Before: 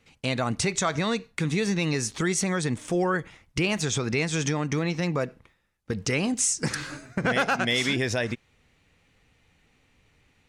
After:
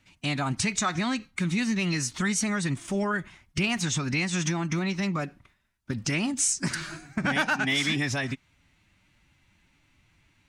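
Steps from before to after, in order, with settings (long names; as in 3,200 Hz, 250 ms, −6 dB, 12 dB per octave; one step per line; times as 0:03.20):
phase-vocoder pitch shift with formants kept +2 semitones
parametric band 490 Hz −14 dB 0.44 octaves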